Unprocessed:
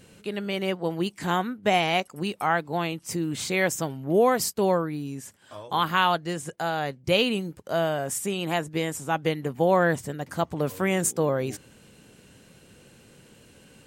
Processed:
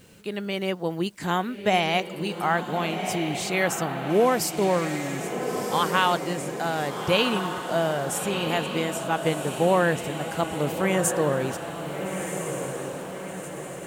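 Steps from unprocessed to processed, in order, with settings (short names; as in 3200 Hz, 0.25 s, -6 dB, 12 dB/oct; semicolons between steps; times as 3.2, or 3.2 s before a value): requantised 10-bit, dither none; on a send: diffused feedback echo 1.372 s, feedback 54%, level -6.5 dB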